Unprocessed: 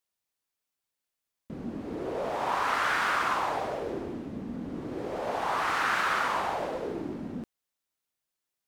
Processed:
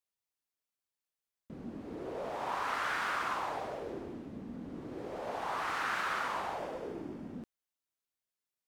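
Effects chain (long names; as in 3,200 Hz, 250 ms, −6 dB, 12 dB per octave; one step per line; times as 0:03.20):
0:06.58–0:07.33: notch filter 4,000 Hz, Q 13
level −7 dB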